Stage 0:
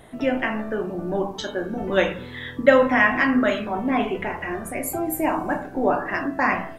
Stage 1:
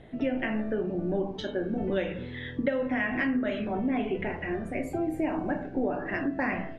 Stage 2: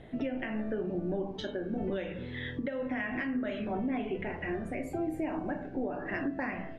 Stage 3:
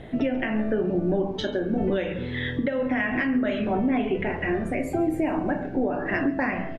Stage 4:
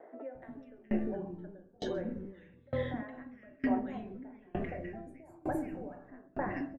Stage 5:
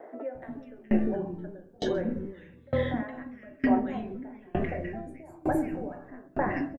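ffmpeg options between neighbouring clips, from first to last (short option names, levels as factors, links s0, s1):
-af "lowpass=2700,equalizer=f=1100:w=1.3:g=-13,acompressor=threshold=0.0631:ratio=12"
-af "alimiter=level_in=1.06:limit=0.0631:level=0:latency=1:release=425,volume=0.944"
-af "aecho=1:1:138:0.1,volume=2.82"
-filter_complex "[0:a]equalizer=f=3100:w=1.2:g=-9.5,acrossover=split=390|1700[s0][s1][s2];[s0]adelay=350[s3];[s2]adelay=420[s4];[s3][s1][s4]amix=inputs=3:normalize=0,aeval=exprs='val(0)*pow(10,-30*if(lt(mod(1.1*n/s,1),2*abs(1.1)/1000),1-mod(1.1*n/s,1)/(2*abs(1.1)/1000),(mod(1.1*n/s,1)-2*abs(1.1)/1000)/(1-2*abs(1.1)/1000))/20)':c=same,volume=0.708"
-filter_complex "[0:a]asplit=2[s0][s1];[s1]adelay=13,volume=0.224[s2];[s0][s2]amix=inputs=2:normalize=0,volume=2.24"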